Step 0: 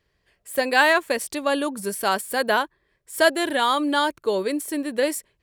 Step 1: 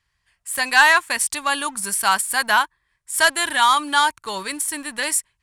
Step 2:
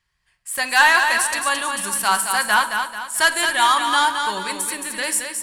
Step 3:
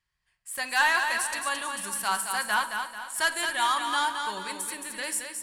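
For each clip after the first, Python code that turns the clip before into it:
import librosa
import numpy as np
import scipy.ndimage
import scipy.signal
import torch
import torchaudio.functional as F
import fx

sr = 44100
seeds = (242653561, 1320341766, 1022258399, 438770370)

y1 = fx.leveller(x, sr, passes=1)
y1 = fx.curve_eq(y1, sr, hz=(100.0, 500.0, 920.0, 4200.0, 9400.0, 16000.0), db=(0, -18, 3, 2, 9, -6))
y2 = fx.echo_feedback(y1, sr, ms=220, feedback_pct=42, wet_db=-6)
y2 = fx.room_shoebox(y2, sr, seeds[0], volume_m3=1900.0, walls='furnished', distance_m=1.0)
y2 = F.gain(torch.from_numpy(y2), -1.0).numpy()
y3 = y2 + 10.0 ** (-20.5 / 20.0) * np.pad(y2, (int(495 * sr / 1000.0), 0))[:len(y2)]
y3 = F.gain(torch.from_numpy(y3), -9.0).numpy()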